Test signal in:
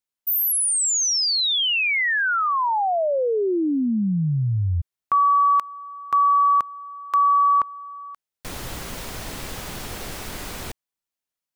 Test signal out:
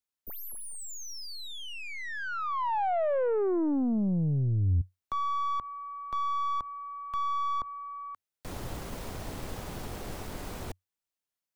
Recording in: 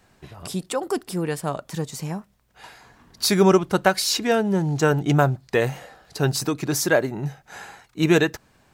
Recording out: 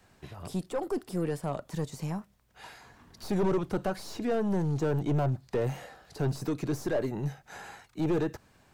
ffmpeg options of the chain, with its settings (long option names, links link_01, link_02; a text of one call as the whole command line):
ffmpeg -i in.wav -filter_complex "[0:a]aeval=exprs='(tanh(11.2*val(0)+0.3)-tanh(0.3))/11.2':channel_layout=same,equalizer=frequency=92:width_type=o:width=0.25:gain=3.5,acrossover=split=310|1100[link_01][link_02][link_03];[link_03]acompressor=threshold=-40dB:ratio=6:attack=0.25:release=47:knee=1:detection=rms[link_04];[link_01][link_02][link_04]amix=inputs=3:normalize=0,volume=-2.5dB" out.wav